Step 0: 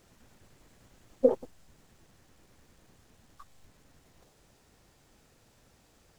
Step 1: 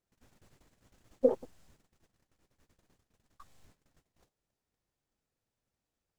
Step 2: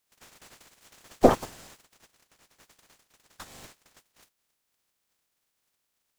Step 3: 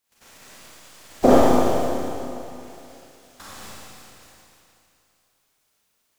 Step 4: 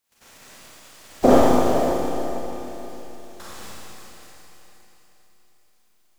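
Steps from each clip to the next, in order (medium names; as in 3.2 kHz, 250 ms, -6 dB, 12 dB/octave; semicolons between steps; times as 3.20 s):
gate -58 dBFS, range -22 dB; trim -3 dB
spectral peaks clipped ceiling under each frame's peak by 28 dB; trim +9 dB
Schroeder reverb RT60 2.8 s, combs from 28 ms, DRR -8.5 dB; trim -1 dB
echo that smears into a reverb 473 ms, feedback 40%, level -11 dB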